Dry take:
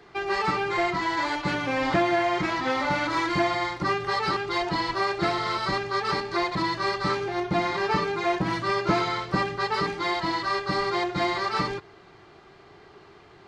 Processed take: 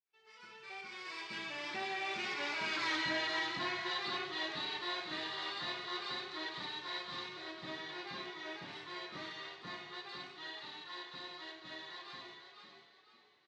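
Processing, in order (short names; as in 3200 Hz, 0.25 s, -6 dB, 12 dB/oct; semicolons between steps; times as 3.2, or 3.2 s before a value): opening faded in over 3.06 s; Doppler pass-by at 2.85, 35 m/s, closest 4.8 m; weighting filter D; reverse; compressor 4:1, threshold -47 dBFS, peak gain reduction 22.5 dB; reverse; frequency-shifting echo 0.499 s, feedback 35%, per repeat +32 Hz, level -6.5 dB; on a send at -4.5 dB: reverb, pre-delay 3 ms; on the sum: gain +7 dB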